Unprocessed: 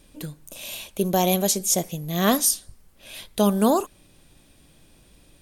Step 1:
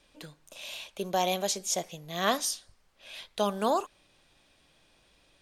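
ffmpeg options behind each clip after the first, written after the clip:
-filter_complex "[0:a]acrossover=split=500 6500:gain=0.251 1 0.158[a][b][c];[a][b][c]amix=inputs=3:normalize=0,volume=-3dB"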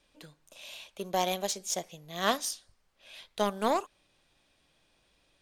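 -af "aeval=exprs='0.282*(cos(1*acos(clip(val(0)/0.282,-1,1)))-cos(1*PI/2))+0.0178*(cos(7*acos(clip(val(0)/0.282,-1,1)))-cos(7*PI/2))':c=same"

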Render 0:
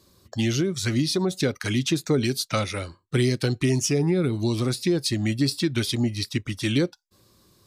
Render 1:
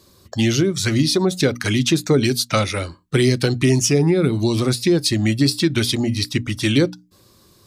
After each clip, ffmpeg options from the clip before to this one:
-af "bandreject=f=60:t=h:w=6,bandreject=f=120:t=h:w=6,bandreject=f=180:t=h:w=6,bandreject=f=240:t=h:w=6,bandreject=f=300:t=h:w=6,volume=6.5dB"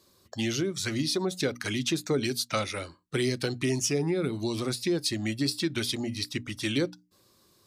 -af "lowshelf=f=160:g=-9,volume=-9dB"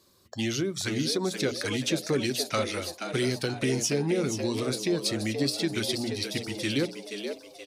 -filter_complex "[0:a]asplit=6[a][b][c][d][e][f];[b]adelay=477,afreqshift=93,volume=-7.5dB[g];[c]adelay=954,afreqshift=186,volume=-14.4dB[h];[d]adelay=1431,afreqshift=279,volume=-21.4dB[i];[e]adelay=1908,afreqshift=372,volume=-28.3dB[j];[f]adelay=2385,afreqshift=465,volume=-35.2dB[k];[a][g][h][i][j][k]amix=inputs=6:normalize=0"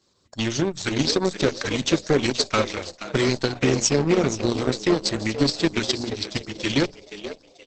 -af "aeval=exprs='0.224*(cos(1*acos(clip(val(0)/0.224,-1,1)))-cos(1*PI/2))+0.02*(cos(5*acos(clip(val(0)/0.224,-1,1)))-cos(5*PI/2))+0.00631*(cos(6*acos(clip(val(0)/0.224,-1,1)))-cos(6*PI/2))+0.0355*(cos(7*acos(clip(val(0)/0.224,-1,1)))-cos(7*PI/2))':c=same,volume=7.5dB" -ar 48000 -c:a libopus -b:a 10k

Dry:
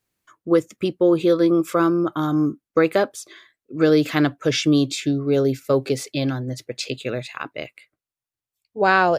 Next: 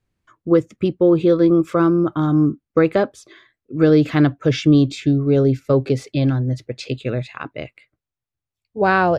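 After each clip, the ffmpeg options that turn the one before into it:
-af "aemphasis=mode=reproduction:type=bsi"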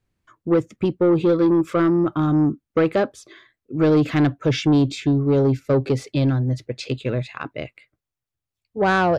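-af "asoftclip=type=tanh:threshold=-11dB"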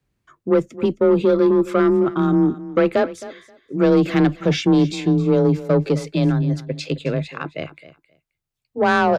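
-af "afreqshift=24,aecho=1:1:265|530:0.15|0.0239,volume=1.5dB"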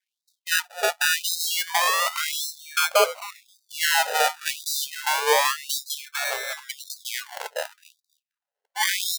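-filter_complex "[0:a]asplit=2[a][b];[b]asoftclip=type=hard:threshold=-17.5dB,volume=-6dB[c];[a][c]amix=inputs=2:normalize=0,acrusher=samples=32:mix=1:aa=0.000001:lfo=1:lforange=19.2:lforate=0.28,afftfilt=real='re*gte(b*sr/1024,410*pow(3700/410,0.5+0.5*sin(2*PI*0.9*pts/sr)))':imag='im*gte(b*sr/1024,410*pow(3700/410,0.5+0.5*sin(2*PI*0.9*pts/sr)))':win_size=1024:overlap=0.75,volume=-1dB"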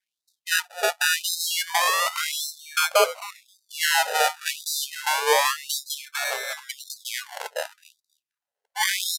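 -af "aresample=32000,aresample=44100"

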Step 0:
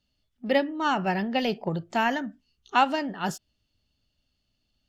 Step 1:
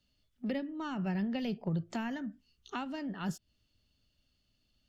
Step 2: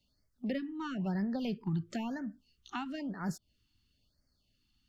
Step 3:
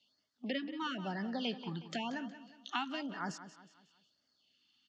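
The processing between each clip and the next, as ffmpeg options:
-filter_complex "[0:a]acrossover=split=220[a][b];[b]acompressor=threshold=-40dB:ratio=4[c];[a][c]amix=inputs=2:normalize=0,equalizer=f=800:t=o:w=0.51:g=-4"
-af "afftfilt=real='re*(1-between(b*sr/1024,490*pow(3200/490,0.5+0.5*sin(2*PI*1*pts/sr))/1.41,490*pow(3200/490,0.5+0.5*sin(2*PI*1*pts/sr))*1.41))':imag='im*(1-between(b*sr/1024,490*pow(3200/490,0.5+0.5*sin(2*PI*1*pts/sr))/1.41,490*pow(3200/490,0.5+0.5*sin(2*PI*1*pts/sr))*1.41))':win_size=1024:overlap=0.75"
-af "highpass=340,equalizer=f=380:t=q:w=4:g=-4,equalizer=f=540:t=q:w=4:g=-4,equalizer=f=3.2k:t=q:w=4:g=8,lowpass=f=6.7k:w=0.5412,lowpass=f=6.7k:w=1.3066,aecho=1:1:182|364|546|728:0.224|0.0918|0.0376|0.0154,volume=3dB"

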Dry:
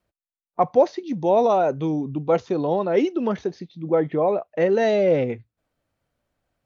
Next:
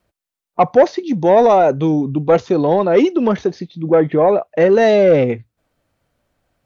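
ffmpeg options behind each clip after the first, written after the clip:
-af "asoftclip=type=tanh:threshold=-10.5dB,volume=8.5dB"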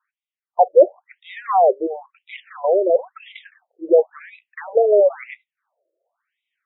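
-af "afftfilt=real='re*between(b*sr/1024,450*pow(2800/450,0.5+0.5*sin(2*PI*0.97*pts/sr))/1.41,450*pow(2800/450,0.5+0.5*sin(2*PI*0.97*pts/sr))*1.41)':imag='im*between(b*sr/1024,450*pow(2800/450,0.5+0.5*sin(2*PI*0.97*pts/sr))/1.41,450*pow(2800/450,0.5+0.5*sin(2*PI*0.97*pts/sr))*1.41)':win_size=1024:overlap=0.75"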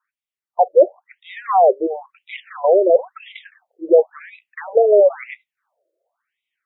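-af "dynaudnorm=f=210:g=9:m=11.5dB,volume=-1dB"

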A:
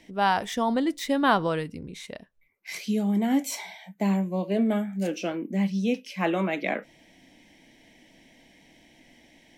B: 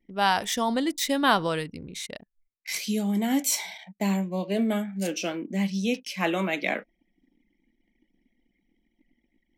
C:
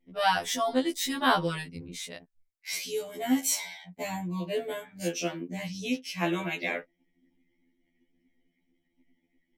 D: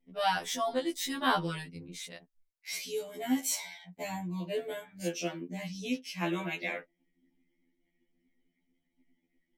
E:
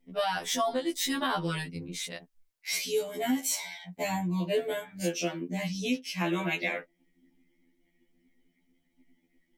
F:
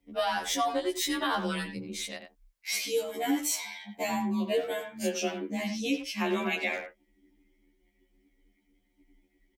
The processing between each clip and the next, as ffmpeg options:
-af "anlmdn=0.0158,highshelf=f=2.8k:g=11.5,volume=-1.5dB"
-af "afftfilt=real='re*2*eq(mod(b,4),0)':imag='im*2*eq(mod(b,4),0)':win_size=2048:overlap=0.75"
-af "flanger=delay=4.4:depth=2.4:regen=-50:speed=0.34:shape=triangular"
-af "alimiter=level_in=1.5dB:limit=-24dB:level=0:latency=1:release=336,volume=-1.5dB,volume=6.5dB"
-filter_complex "[0:a]asplit=2[a][b];[b]adelay=90,highpass=300,lowpass=3.4k,asoftclip=type=hard:threshold=-27dB,volume=-8dB[c];[a][c]amix=inputs=2:normalize=0,afreqshift=28"

